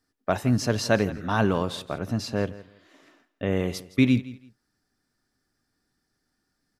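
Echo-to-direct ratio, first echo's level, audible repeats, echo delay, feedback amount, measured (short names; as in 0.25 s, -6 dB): -18.0 dB, -18.0 dB, 2, 0.166 s, 22%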